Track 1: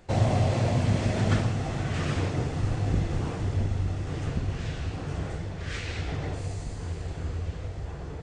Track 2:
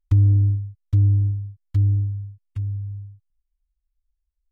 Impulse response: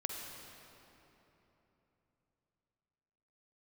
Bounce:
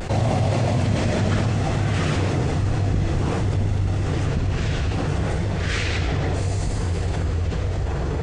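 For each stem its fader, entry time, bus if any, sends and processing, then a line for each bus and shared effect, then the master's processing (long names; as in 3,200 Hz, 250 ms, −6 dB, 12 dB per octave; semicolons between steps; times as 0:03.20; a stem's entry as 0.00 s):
+1.0 dB, 0.00 s, no send, no processing
−19.0 dB, 0.00 s, no send, no processing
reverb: not used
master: pitch vibrato 0.61 Hz 42 cents; envelope flattener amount 70%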